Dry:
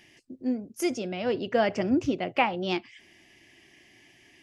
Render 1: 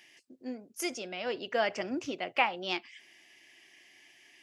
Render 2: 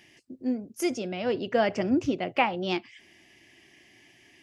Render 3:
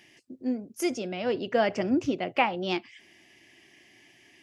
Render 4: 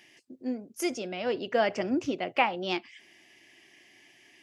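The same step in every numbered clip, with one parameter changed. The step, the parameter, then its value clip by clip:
high-pass filter, corner frequency: 960, 46, 130, 350 Hertz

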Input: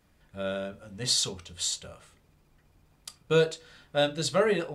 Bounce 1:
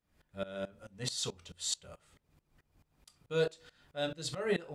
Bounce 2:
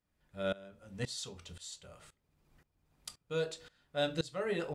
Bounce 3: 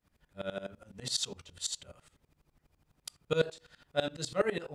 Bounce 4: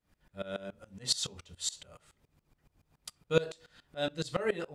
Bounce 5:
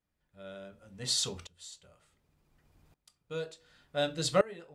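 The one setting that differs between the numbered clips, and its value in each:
tremolo with a ramp in dB, speed: 4.6, 1.9, 12, 7.1, 0.68 Hertz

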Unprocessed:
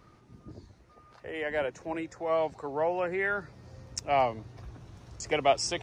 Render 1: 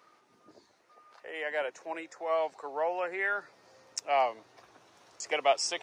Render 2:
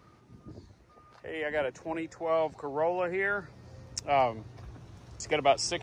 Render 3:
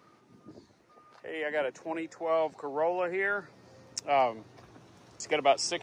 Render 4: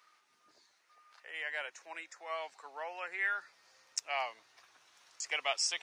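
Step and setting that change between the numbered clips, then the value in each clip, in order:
high-pass filter, corner frequency: 540, 49, 210, 1,500 Hertz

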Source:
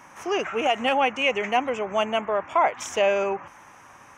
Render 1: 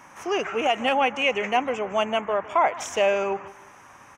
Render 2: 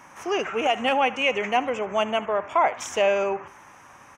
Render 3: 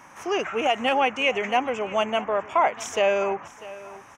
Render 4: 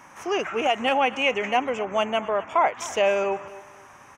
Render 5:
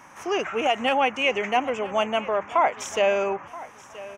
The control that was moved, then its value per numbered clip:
repeating echo, delay time: 157, 74, 646, 254, 977 milliseconds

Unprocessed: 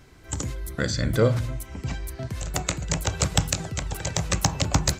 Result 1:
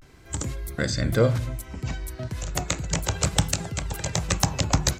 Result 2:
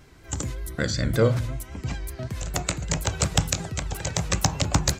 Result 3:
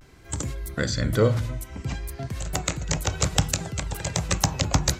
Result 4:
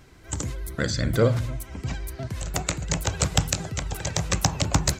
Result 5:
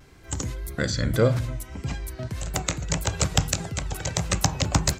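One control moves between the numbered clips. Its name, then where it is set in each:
pitch vibrato, speed: 0.34, 5.3, 0.57, 15, 1.7 Hertz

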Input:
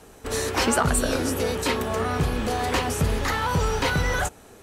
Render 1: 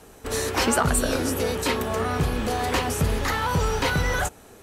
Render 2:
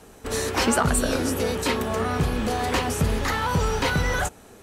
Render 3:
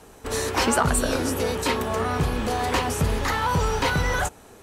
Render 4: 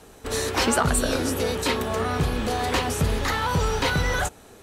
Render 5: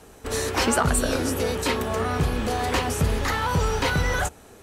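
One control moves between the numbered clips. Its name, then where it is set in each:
parametric band, centre frequency: 13,000, 210, 960, 3,800, 72 Hertz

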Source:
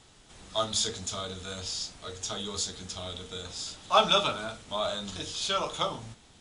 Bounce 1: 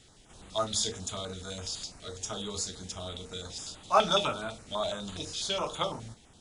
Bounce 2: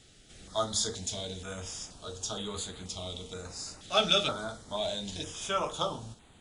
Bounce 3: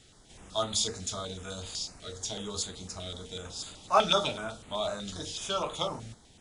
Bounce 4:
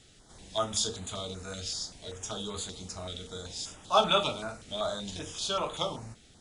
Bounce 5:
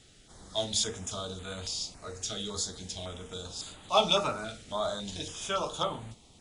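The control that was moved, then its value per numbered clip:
notch on a step sequencer, speed: 12, 2.1, 8, 5.2, 3.6 Hertz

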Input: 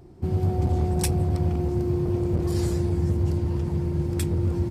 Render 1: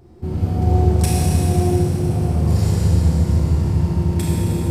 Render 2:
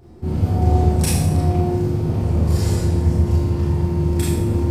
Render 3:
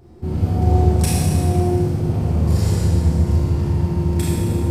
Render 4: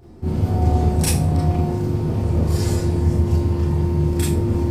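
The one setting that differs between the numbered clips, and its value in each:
four-comb reverb, RT60: 3.7, 0.78, 1.8, 0.33 seconds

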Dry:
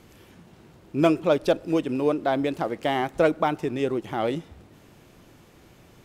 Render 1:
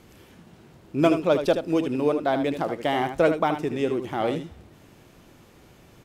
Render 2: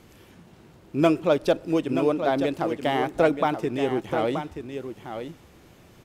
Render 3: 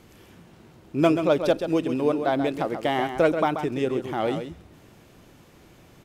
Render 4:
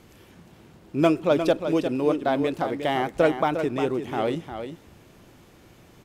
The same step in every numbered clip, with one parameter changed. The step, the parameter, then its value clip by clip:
single-tap delay, delay time: 77, 928, 133, 354 milliseconds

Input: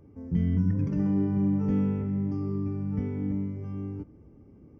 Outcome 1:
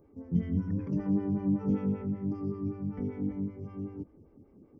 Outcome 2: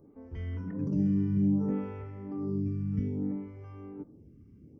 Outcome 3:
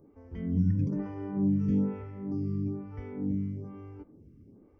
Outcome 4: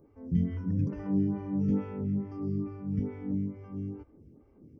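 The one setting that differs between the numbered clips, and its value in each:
phaser with staggered stages, speed: 5.2, 0.62, 1.1, 2.3 Hertz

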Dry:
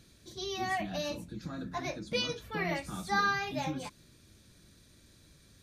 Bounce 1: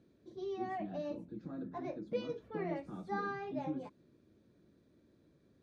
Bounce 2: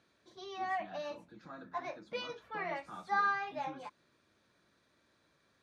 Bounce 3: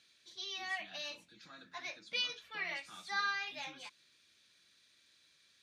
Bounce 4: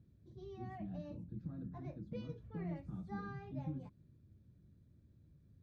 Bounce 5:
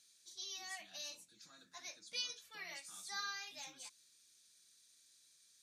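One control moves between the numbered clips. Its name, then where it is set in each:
resonant band-pass, frequency: 360, 1,000, 2,900, 110, 7,300 Hertz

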